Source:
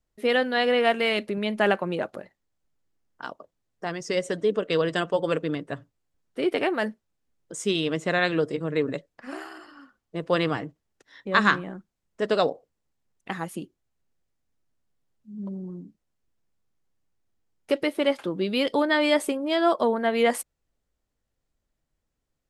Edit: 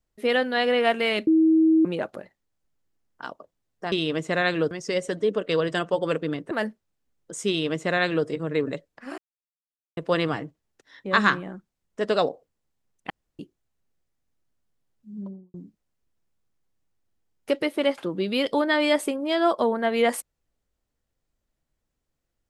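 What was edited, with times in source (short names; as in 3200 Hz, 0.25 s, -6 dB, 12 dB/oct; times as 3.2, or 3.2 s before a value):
1.27–1.85 bleep 320 Hz -14.5 dBFS
5.72–6.72 cut
7.69–8.48 copy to 3.92
9.39–10.18 mute
13.31–13.6 room tone
15.36–15.75 studio fade out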